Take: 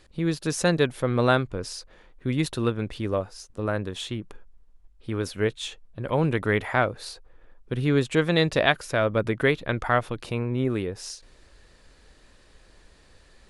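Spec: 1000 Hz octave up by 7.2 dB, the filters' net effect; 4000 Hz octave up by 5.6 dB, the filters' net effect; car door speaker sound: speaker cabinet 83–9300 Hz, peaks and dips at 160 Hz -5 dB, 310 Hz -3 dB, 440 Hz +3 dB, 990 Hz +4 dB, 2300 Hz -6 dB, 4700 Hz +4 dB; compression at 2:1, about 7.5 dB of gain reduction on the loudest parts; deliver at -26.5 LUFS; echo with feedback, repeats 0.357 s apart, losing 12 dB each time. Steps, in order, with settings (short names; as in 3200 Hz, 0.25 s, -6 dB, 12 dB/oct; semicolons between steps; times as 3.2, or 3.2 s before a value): bell 1000 Hz +7.5 dB; bell 4000 Hz +5.5 dB; compressor 2:1, threshold -25 dBFS; speaker cabinet 83–9300 Hz, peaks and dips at 160 Hz -5 dB, 310 Hz -3 dB, 440 Hz +3 dB, 990 Hz +4 dB, 2300 Hz -6 dB, 4700 Hz +4 dB; feedback echo 0.357 s, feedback 25%, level -12 dB; gain +1.5 dB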